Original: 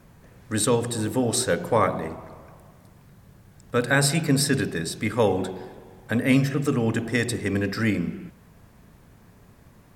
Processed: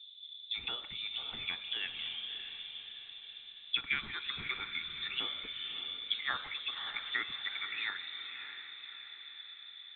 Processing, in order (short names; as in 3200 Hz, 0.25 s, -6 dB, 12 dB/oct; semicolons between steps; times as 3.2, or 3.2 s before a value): bell 380 Hz +14.5 dB 1.1 oct; auto-wah 390–2700 Hz, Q 2.9, up, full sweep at -10.5 dBFS; in parallel at +3 dB: compressor, threshold -43 dBFS, peak gain reduction 19.5 dB; on the sum: inverted band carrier 3900 Hz; on a send: diffused feedback echo 0.602 s, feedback 51%, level -8.5 dB; on the sum: dynamic EQ 250 Hz, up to +4 dB, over -60 dBFS, Q 1.3; gain -7 dB